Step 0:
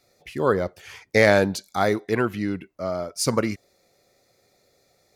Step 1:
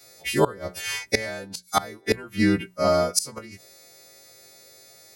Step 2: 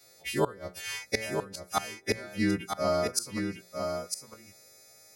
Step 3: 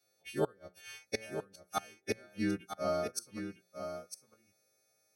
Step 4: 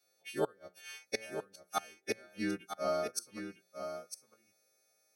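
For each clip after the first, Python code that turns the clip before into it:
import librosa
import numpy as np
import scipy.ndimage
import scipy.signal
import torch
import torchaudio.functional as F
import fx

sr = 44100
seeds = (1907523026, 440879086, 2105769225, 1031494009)

y1 = fx.freq_snap(x, sr, grid_st=2)
y1 = fx.gate_flip(y1, sr, shuts_db=-14.0, range_db=-25)
y1 = fx.hum_notches(y1, sr, base_hz=60, count=3)
y1 = F.gain(torch.from_numpy(y1), 7.5).numpy()
y2 = y1 + 10.0 ** (-5.5 / 20.0) * np.pad(y1, (int(953 * sr / 1000.0), 0))[:len(y1)]
y2 = F.gain(torch.from_numpy(y2), -7.0).numpy()
y3 = fx.notch_comb(y2, sr, f0_hz=1000.0)
y3 = fx.upward_expand(y3, sr, threshold_db=-47.0, expansion=1.5)
y3 = F.gain(torch.from_numpy(y3), -3.5).numpy()
y4 = fx.highpass(y3, sr, hz=310.0, slope=6)
y4 = F.gain(torch.from_numpy(y4), 1.0).numpy()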